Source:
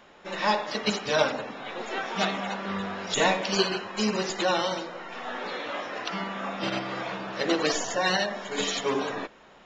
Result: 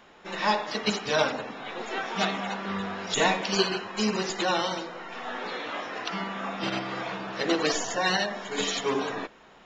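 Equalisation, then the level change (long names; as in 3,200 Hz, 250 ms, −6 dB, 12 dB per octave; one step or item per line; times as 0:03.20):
notch filter 570 Hz, Q 12
0.0 dB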